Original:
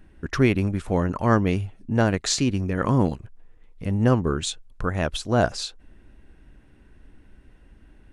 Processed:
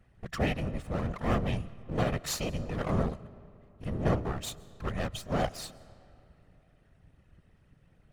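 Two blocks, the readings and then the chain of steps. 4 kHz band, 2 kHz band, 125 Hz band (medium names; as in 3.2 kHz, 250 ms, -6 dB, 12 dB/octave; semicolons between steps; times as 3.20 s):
-9.5 dB, -9.5 dB, -9.0 dB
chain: comb filter that takes the minimum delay 1.6 ms; whisper effect; algorithmic reverb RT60 2.8 s, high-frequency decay 0.65×, pre-delay 90 ms, DRR 20 dB; trim -8.5 dB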